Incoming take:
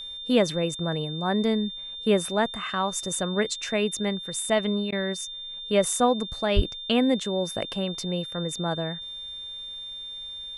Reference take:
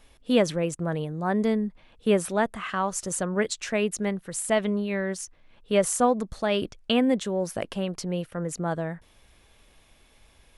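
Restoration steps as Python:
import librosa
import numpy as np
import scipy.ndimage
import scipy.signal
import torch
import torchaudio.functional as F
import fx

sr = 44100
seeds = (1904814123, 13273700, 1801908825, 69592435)

y = fx.notch(x, sr, hz=3600.0, q=30.0)
y = fx.highpass(y, sr, hz=140.0, slope=24, at=(6.55, 6.67), fade=0.02)
y = fx.fix_interpolate(y, sr, at_s=(4.91,), length_ms=12.0)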